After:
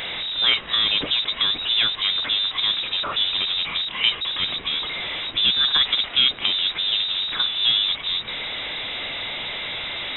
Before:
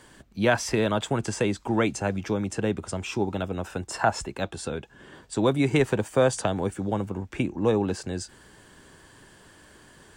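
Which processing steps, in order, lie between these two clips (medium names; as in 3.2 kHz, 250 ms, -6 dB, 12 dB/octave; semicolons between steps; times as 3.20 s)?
jump at every zero crossing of -23 dBFS; frequency inversion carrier 3.8 kHz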